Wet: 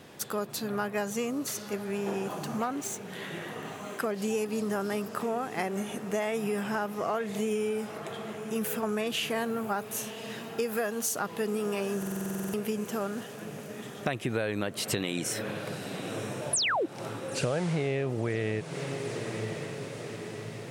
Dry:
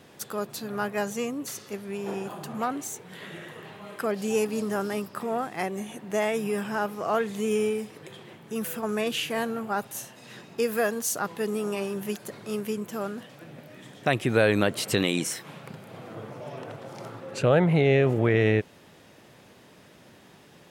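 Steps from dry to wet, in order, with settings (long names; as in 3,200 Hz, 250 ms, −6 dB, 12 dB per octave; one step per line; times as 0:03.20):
0:02.42–0:03.10: running median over 3 samples
0:16.53–0:16.86: sound drawn into the spectrogram fall 280–11,000 Hz −19 dBFS
on a send: feedback delay with all-pass diffusion 1,015 ms, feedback 57%, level −16 dB
on the sum: downward compressor 6 to 1, threshold −29 dBFS, peak gain reduction 12.5 dB
buffer that repeats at 0:11.98, samples 2,048, times 11
level +2 dB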